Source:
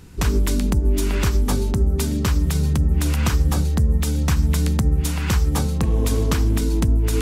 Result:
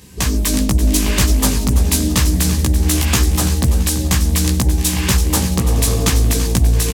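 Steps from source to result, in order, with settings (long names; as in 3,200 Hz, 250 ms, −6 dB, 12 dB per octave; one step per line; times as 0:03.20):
high-pass filter 60 Hz 12 dB per octave
high-shelf EQ 3,200 Hz +10.5 dB
automatic gain control gain up to 5 dB
on a send: repeating echo 349 ms, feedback 43%, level −11 dB
on the sum: wrong playback speed 24 fps film run at 25 fps
Butterworth band-reject 1,400 Hz, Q 6.5
double-tracking delay 16 ms −2 dB
highs frequency-modulated by the lows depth 0.4 ms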